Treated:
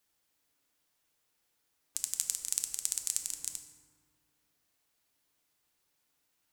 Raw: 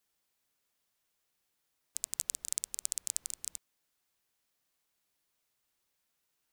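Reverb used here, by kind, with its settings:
feedback delay network reverb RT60 1.7 s, low-frequency decay 1.5×, high-frequency decay 0.5×, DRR 5 dB
level +2 dB

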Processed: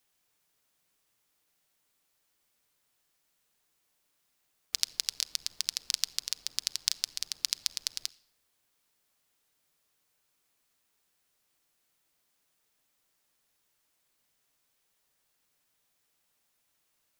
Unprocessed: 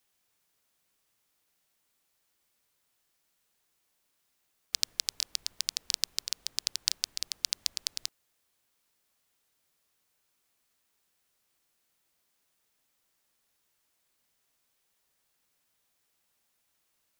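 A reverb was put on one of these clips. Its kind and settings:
rectangular room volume 3,700 cubic metres, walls furnished, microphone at 0.43 metres

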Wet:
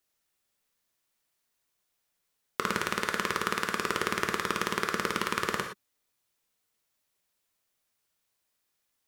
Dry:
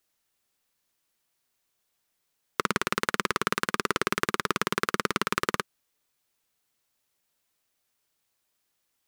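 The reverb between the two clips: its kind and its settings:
reverb whose tail is shaped and stops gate 140 ms flat, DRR 3 dB
level −3.5 dB

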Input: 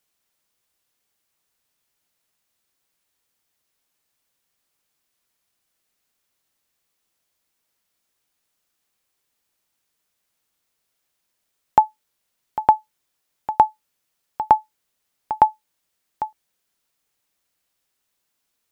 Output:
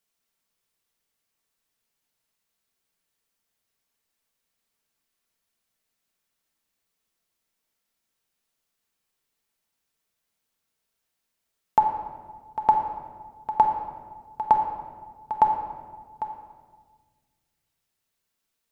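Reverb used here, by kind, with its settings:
rectangular room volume 1,600 cubic metres, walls mixed, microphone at 1.6 metres
level −6.5 dB

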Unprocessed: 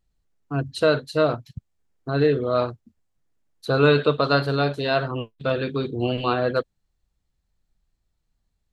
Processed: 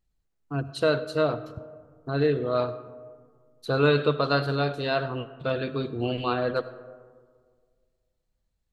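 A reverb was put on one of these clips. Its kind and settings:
comb and all-pass reverb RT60 1.8 s, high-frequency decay 0.35×, pre-delay 40 ms, DRR 14.5 dB
level −4 dB

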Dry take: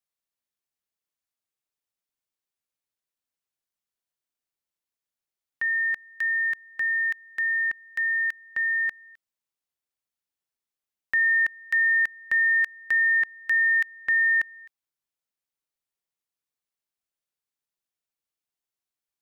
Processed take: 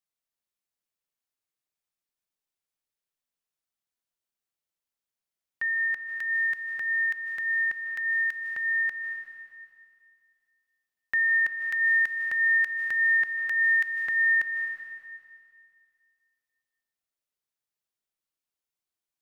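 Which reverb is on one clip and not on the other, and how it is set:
comb and all-pass reverb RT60 2.2 s, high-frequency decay 1×, pre-delay 115 ms, DRR 4.5 dB
level −2.5 dB

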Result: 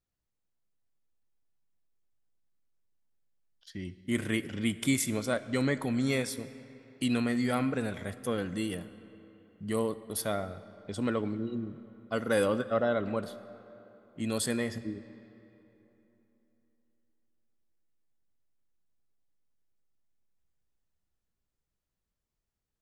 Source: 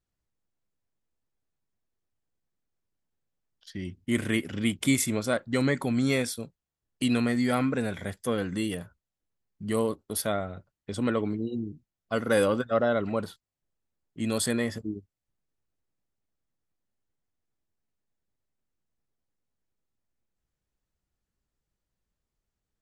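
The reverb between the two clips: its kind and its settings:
comb and all-pass reverb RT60 3.4 s, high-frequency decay 0.65×, pre-delay 10 ms, DRR 14.5 dB
level −3.5 dB

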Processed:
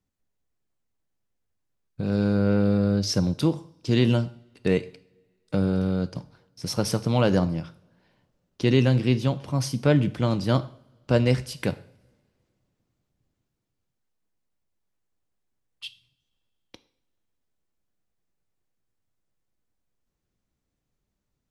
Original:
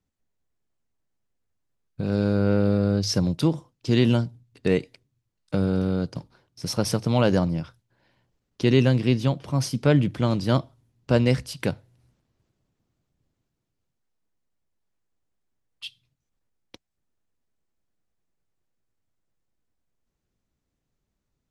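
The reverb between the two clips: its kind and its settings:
coupled-rooms reverb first 0.53 s, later 2.3 s, from −25 dB, DRR 12.5 dB
level −1 dB

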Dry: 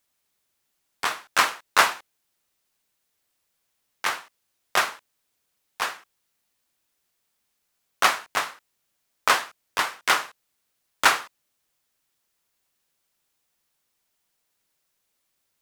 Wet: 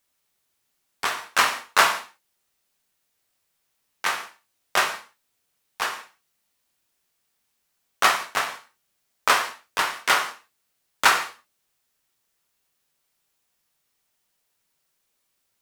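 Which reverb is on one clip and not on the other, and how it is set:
reverb whose tail is shaped and stops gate 200 ms falling, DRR 4.5 dB

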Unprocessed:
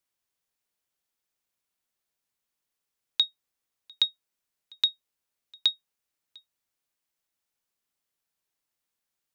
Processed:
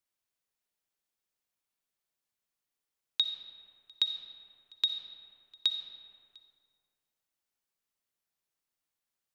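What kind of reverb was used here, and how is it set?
comb and all-pass reverb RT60 2.3 s, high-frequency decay 0.5×, pre-delay 20 ms, DRR 6.5 dB
level −4.5 dB

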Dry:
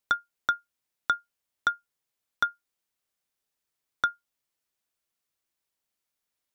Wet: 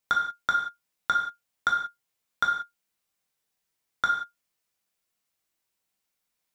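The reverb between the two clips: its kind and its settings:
reverb whose tail is shaped and stops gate 210 ms falling, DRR −1 dB

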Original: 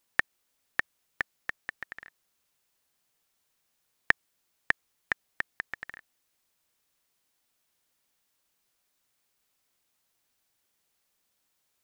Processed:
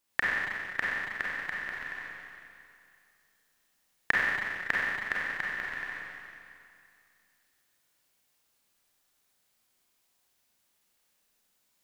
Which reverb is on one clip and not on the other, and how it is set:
four-comb reverb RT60 2.4 s, combs from 31 ms, DRR −6 dB
level −4 dB

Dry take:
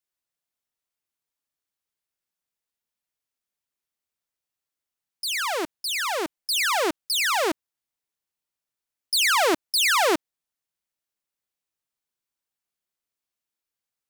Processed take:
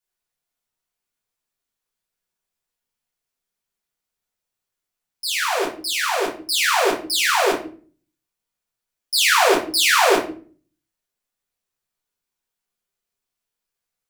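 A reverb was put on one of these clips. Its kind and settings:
rectangular room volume 31 cubic metres, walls mixed, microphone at 0.96 metres
level −1.5 dB

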